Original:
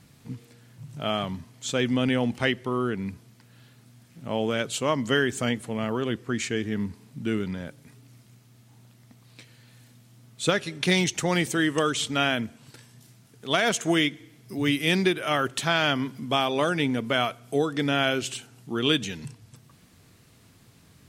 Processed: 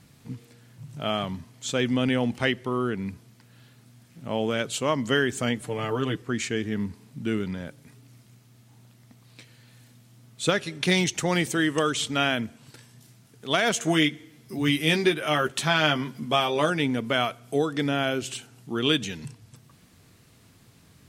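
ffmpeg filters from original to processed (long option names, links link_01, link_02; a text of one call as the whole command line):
ffmpeg -i in.wav -filter_complex "[0:a]asettb=1/sr,asplit=3[link_01][link_02][link_03];[link_01]atrim=end=5.614[link_04];[link_02]atrim=start=5.61:end=6.22,asetpts=PTS-STARTPTS,afade=type=in:duration=0.004:curve=qsin,afade=type=out:start_time=0.606:duration=0.004:curve=qsin,aecho=1:1:6.7:0.73,atrim=end_sample=26901[link_05];[link_03]atrim=start=6.216[link_06];[link_04][link_05]acrossfade=duration=0.004:curve1=hsin:curve2=qsin[link_07];[link_07][link_06]acrossfade=duration=0.004:curve1=qsin:curve2=hsin,asettb=1/sr,asplit=3[link_08][link_09][link_10];[link_08]atrim=end=13.754[link_11];[link_09]atrim=start=13.75:end=16.7,asetpts=PTS-STARTPTS,afade=type=in:duration=0.004:curve=qsin,afade=type=out:start_time=2.946:duration=0.004:curve=qsin,asplit=2[link_12][link_13];[link_13]adelay=13,volume=-6dB[link_14];[link_12][link_14]amix=inputs=2:normalize=0,atrim=end_sample=130095[link_15];[link_10]atrim=start=16.696[link_16];[link_11][link_15]acrossfade=duration=0.004:curve1=hsin:curve2=qsin[link_17];[link_17][link_16]acrossfade=duration=0.004:curve1=qsin:curve2=hsin,asettb=1/sr,asplit=3[link_18][link_19][link_20];[link_18]atrim=end=17.884[link_21];[link_19]atrim=start=17.88:end=18.28,asetpts=PTS-STARTPTS,afade=type=in:duration=0.004:curve=qsin,afade=type=out:start_time=0.396:duration=0.004:curve=qsin,equalizer=frequency=3000:width_type=o:width=2.9:gain=-4.5[link_22];[link_20]atrim=start=18.276[link_23];[link_21][link_22]acrossfade=duration=0.004:curve1=hsin:curve2=qsin[link_24];[link_24][link_23]acrossfade=duration=0.004:curve1=qsin:curve2=hsin" out.wav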